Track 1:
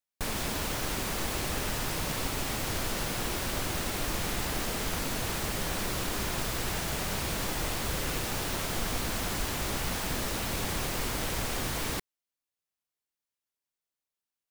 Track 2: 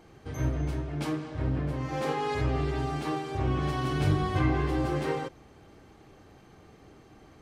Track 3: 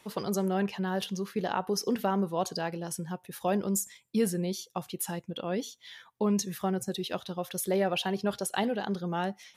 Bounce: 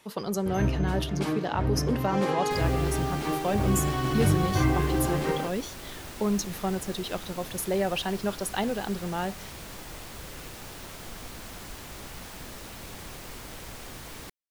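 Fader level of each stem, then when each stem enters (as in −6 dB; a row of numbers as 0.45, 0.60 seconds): −9.5, +2.0, +0.5 decibels; 2.30, 0.20, 0.00 seconds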